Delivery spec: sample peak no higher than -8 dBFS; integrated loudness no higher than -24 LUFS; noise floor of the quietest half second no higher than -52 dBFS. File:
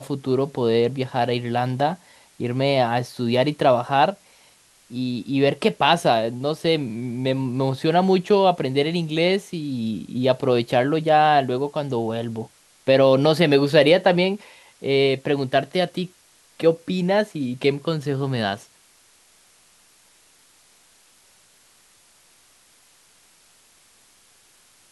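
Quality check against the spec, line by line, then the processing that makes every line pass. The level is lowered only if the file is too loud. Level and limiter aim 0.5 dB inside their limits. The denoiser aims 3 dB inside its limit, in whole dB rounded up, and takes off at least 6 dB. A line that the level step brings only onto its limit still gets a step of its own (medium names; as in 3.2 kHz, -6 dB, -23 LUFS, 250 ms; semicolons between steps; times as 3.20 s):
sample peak -3.0 dBFS: fail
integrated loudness -21.0 LUFS: fail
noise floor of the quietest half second -56 dBFS: pass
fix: trim -3.5 dB; peak limiter -8.5 dBFS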